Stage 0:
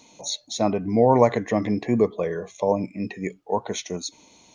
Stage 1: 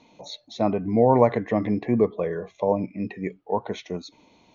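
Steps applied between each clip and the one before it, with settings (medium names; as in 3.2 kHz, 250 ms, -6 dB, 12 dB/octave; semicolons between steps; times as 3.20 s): distance through air 250 m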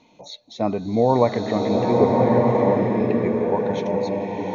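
swelling reverb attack 1350 ms, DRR -2.5 dB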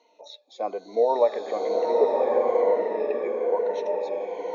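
drifting ripple filter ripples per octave 1.9, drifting -1.1 Hz, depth 11 dB; ladder high-pass 400 Hz, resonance 45%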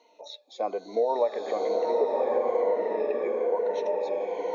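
compression 2:1, threshold -27 dBFS, peak gain reduction 7 dB; trim +1.5 dB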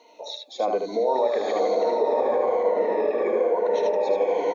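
peak limiter -22.5 dBFS, peak gain reduction 8 dB; on a send: delay 76 ms -4.5 dB; on the sum: trim +7 dB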